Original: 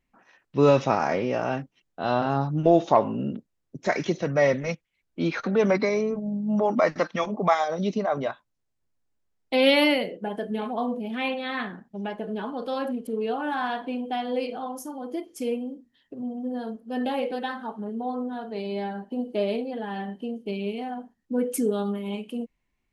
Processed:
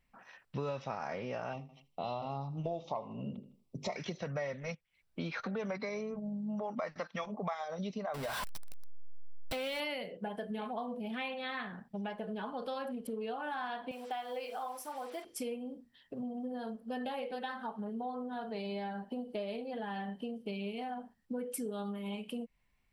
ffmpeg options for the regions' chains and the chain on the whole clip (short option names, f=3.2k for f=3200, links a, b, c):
-filter_complex "[0:a]asettb=1/sr,asplit=3[a][b][c];[a]atrim=end=1.534[d];[b]atrim=start=1.53:end=3.96,asetpts=PTS-STARTPTS,afade=t=in:d=0.004:c=qsin,afade=t=out:st=2.426:d=0.004:c=qsin,asuperstop=centerf=1600:order=4:qfactor=1.7,bandreject=f=50:t=h:w=6,bandreject=f=100:t=h:w=6,bandreject=f=150:t=h:w=6,bandreject=f=200:t=h:w=6,bandreject=f=250:t=h:w=6,bandreject=f=300:t=h:w=6,bandreject=f=350:t=h:w=6,bandreject=f=400:t=h:w=6,bandreject=f=450:t=h:w=6,bandreject=f=500:t=h:w=6,aecho=1:1:79|158|237:0.0891|0.0401|0.018,atrim=end_sample=107163[e];[c]atrim=start=3.956[f];[d][e]acrossfade=d=0.004:c1=hsin:c2=qsin[g];[g][f]acrossfade=d=0.004:c1=qsin:c2=hsin,asettb=1/sr,asplit=3[h][i][j];[h]atrim=end=8.144[k];[i]atrim=start=8.14:end=9.8,asetpts=PTS-STARTPTS,afade=t=in:d=0.004:c=qsin,afade=t=out:st=1.656:d=0.004:c=qsin,aeval=exprs='val(0)+0.5*0.0708*sgn(val(0))':c=same,acompressor=threshold=-24dB:ratio=2:attack=3.2:release=140:knee=1:detection=peak[l];[j]atrim=start=9.796[m];[k][l]acrossfade=d=0.004:c1=hsin:c2=qsin[n];[n][m]acrossfade=d=0.004:c1=qsin:c2=hsin,asettb=1/sr,asplit=3[o][p][q];[o]atrim=end=13.914[r];[p]atrim=start=13.91:end=15.25,asetpts=PTS-STARTPTS,afade=t=in:d=0.004:c=qsin,afade=t=out:st=1.336:d=0.004:c=qsin,acrusher=bits=7:mix=0:aa=0.5,bandpass=f=1k:t=q:w=0.61,aemphasis=mode=production:type=bsi[s];[q]atrim=start=15.246[t];[r][s]acrossfade=d=0.004:c1=hsin:c2=qsin[u];[u][t]acrossfade=d=0.004:c1=qsin:c2=hsin,equalizer=f=320:t=o:w=0.71:g=-10,acompressor=threshold=-39dB:ratio=5,bandreject=f=6.6k:w=6.9,volume=2dB"